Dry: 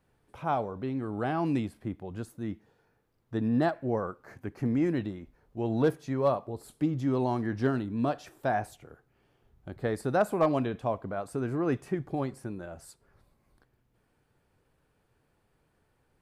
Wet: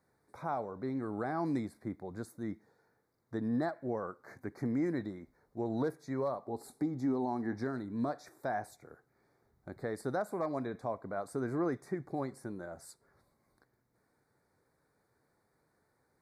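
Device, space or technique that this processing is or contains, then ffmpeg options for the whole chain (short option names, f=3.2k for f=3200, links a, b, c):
PA system with an anti-feedback notch: -filter_complex "[0:a]asettb=1/sr,asplit=3[a][b][c];[a]atrim=end=6.464[d];[b]atrim=start=6.46:end=7.59,asetpts=PTS-STARTPTS,afade=t=in:d=0.004:c=qsin,afade=t=out:st=1.126:d=0.004:c=qsin,equalizer=f=250:t=o:w=0.33:g=8,equalizer=f=400:t=o:w=0.33:g=5,equalizer=f=800:t=o:w=0.33:g=10[e];[c]atrim=start=7.586[f];[d][e]acrossfade=d=0.004:c1=hsin:c2=qsin[g];[g][f]acrossfade=d=0.004:c1=qsin:c2=hsin,highpass=f=190:p=1,asuperstop=centerf=2900:order=8:qfactor=2.1,alimiter=limit=-23dB:level=0:latency=1:release=376,volume=-1.5dB"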